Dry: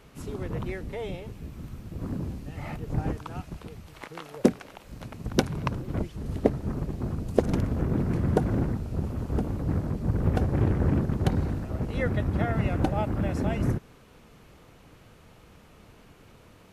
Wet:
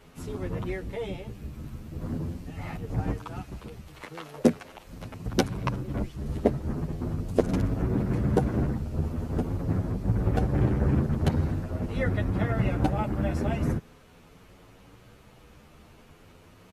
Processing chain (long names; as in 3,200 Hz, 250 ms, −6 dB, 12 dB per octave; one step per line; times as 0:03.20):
barber-pole flanger 9.3 ms +0.43 Hz
level +3 dB